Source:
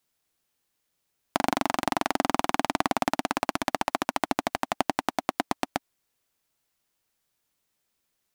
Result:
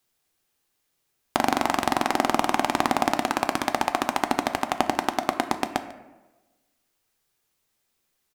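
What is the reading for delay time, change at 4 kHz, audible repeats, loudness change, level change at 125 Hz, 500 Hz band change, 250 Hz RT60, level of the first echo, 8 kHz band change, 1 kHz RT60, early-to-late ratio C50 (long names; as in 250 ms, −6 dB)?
146 ms, +3.0 dB, 1, +3.5 dB, +2.5 dB, +3.0 dB, 1.2 s, −19.5 dB, +3.0 dB, 1.1 s, 11.0 dB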